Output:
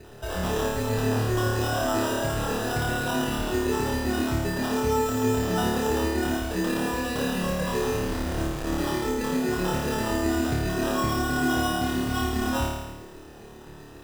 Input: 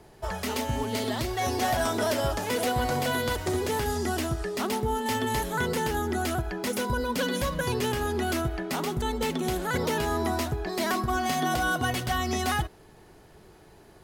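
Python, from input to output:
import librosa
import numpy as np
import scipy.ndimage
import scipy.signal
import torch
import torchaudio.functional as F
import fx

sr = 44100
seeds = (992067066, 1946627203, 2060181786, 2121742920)

p1 = fx.peak_eq(x, sr, hz=880.0, db=-3.5, octaves=0.59)
p2 = fx.over_compress(p1, sr, threshold_db=-35.0, ratio=-1.0)
p3 = p1 + (p2 * 10.0 ** (1.0 / 20.0))
p4 = fx.harmonic_tremolo(p3, sr, hz=7.6, depth_pct=100, crossover_hz=690.0)
p5 = fx.sample_hold(p4, sr, seeds[0], rate_hz=2200.0, jitter_pct=0)
p6 = fx.schmitt(p5, sr, flips_db=-30.5, at=(7.91, 8.78))
p7 = fx.room_flutter(p6, sr, wall_m=4.7, rt60_s=1.1)
y = p7 * 10.0 ** (-2.0 / 20.0)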